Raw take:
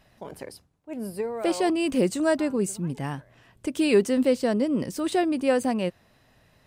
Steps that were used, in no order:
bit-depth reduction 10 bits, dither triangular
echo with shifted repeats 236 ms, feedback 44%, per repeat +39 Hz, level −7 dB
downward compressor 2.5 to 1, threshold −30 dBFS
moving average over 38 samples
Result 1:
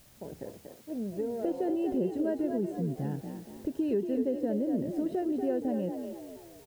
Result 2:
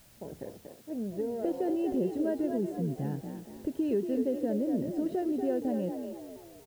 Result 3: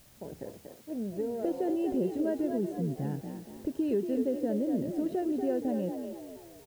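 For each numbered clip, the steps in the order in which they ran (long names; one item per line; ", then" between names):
moving average, then bit-depth reduction, then downward compressor, then echo with shifted repeats
moving average, then downward compressor, then echo with shifted repeats, then bit-depth reduction
moving average, then downward compressor, then bit-depth reduction, then echo with shifted repeats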